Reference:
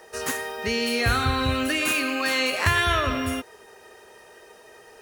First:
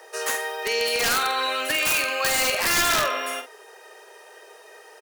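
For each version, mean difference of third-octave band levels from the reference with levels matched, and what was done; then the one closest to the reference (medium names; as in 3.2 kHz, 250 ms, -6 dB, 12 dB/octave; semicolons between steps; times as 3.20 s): 5.5 dB: inverse Chebyshev high-pass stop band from 200 Hz, stop band 40 dB; integer overflow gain 16.5 dB; doubling 47 ms -9 dB; trim +2 dB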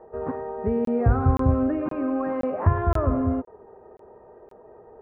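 14.5 dB: low-pass 1 kHz 24 dB/octave; bass shelf 330 Hz +5 dB; crackling interface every 0.52 s, samples 1024, zero, from 0.85 s; trim +1.5 dB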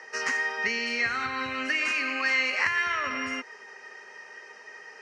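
8.0 dB: band-stop 3.5 kHz, Q 8.6; compression, threshold -27 dBFS, peak gain reduction 11 dB; cabinet simulation 300–5800 Hz, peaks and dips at 330 Hz -9 dB, 470 Hz -5 dB, 670 Hz -9 dB, 2 kHz +10 dB, 3.7 kHz -9 dB, 5.6 kHz +5 dB; trim +2 dB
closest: first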